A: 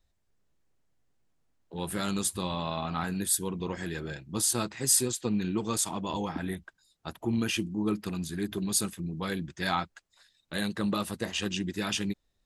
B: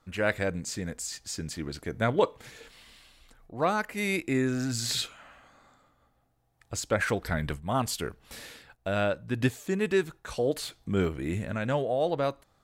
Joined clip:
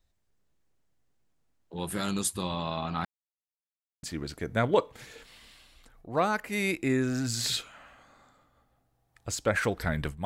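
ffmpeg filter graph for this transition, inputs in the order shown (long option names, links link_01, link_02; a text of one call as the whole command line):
ffmpeg -i cue0.wav -i cue1.wav -filter_complex "[0:a]apad=whole_dur=10.25,atrim=end=10.25,asplit=2[link_01][link_02];[link_01]atrim=end=3.05,asetpts=PTS-STARTPTS,afade=type=out:start_time=3.046:duration=0.004:curve=hsin[link_03];[link_02]atrim=start=3.05:end=4.03,asetpts=PTS-STARTPTS,volume=0[link_04];[1:a]atrim=start=1.48:end=7.7,asetpts=PTS-STARTPTS,afade=type=in:duration=0.004:curve=hsin[link_05];[link_03][link_04][link_05]concat=n=3:v=0:a=1" out.wav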